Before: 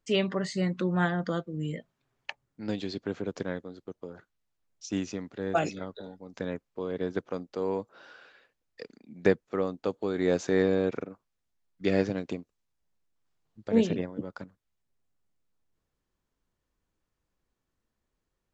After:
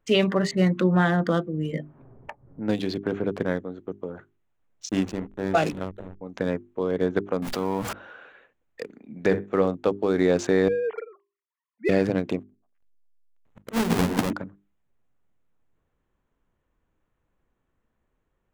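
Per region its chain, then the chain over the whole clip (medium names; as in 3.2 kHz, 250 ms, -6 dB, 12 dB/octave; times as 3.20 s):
0.51–3.58 s: level-controlled noise filter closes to 420 Hz, open at -27 dBFS + upward compressor, threshold -38 dBFS
4.89–6.21 s: hum notches 60/120/180/240/300/360/420/480/540 Hz + hysteresis with a dead band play -35 dBFS + dynamic bell 4.7 kHz, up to +5 dB, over -52 dBFS, Q 0.76
7.42–7.93 s: jump at every zero crossing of -43 dBFS + peaking EQ 460 Hz -10 dB 0.78 oct + level flattener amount 70%
8.97–9.75 s: doubling 20 ms -13.5 dB + flutter echo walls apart 11 m, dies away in 0.22 s
10.68–11.89 s: formants replaced by sine waves + high-pass 450 Hz + comb 1 ms, depth 36%
12.39–14.33 s: square wave that keeps the level + slow attack 469 ms + repeats whose band climbs or falls 116 ms, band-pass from 300 Hz, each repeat 1.4 oct, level -3 dB
whole clip: local Wiener filter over 9 samples; hum notches 50/100/150/200/250/300/350/400 Hz; loudness maximiser +17 dB; trim -9 dB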